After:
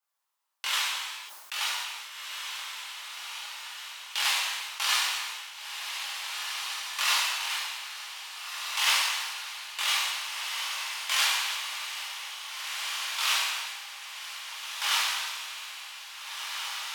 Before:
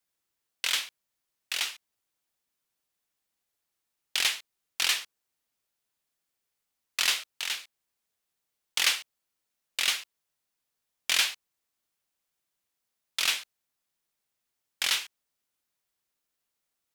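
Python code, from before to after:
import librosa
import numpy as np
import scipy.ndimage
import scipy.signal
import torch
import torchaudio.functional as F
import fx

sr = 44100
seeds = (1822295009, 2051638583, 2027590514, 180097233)

y = scipy.signal.sosfilt(scipy.signal.butter(2, 620.0, 'highpass', fs=sr, output='sos'), x)
y = fx.peak_eq(y, sr, hz=990.0, db=12.5, octaves=0.82)
y = fx.echo_diffused(y, sr, ms=1788, feedback_pct=54, wet_db=-5.0)
y = fx.rev_gated(y, sr, seeds[0], gate_ms=420, shape='falling', drr_db=-6.5)
y = fx.sustainer(y, sr, db_per_s=34.0)
y = y * librosa.db_to_amplitude(-7.5)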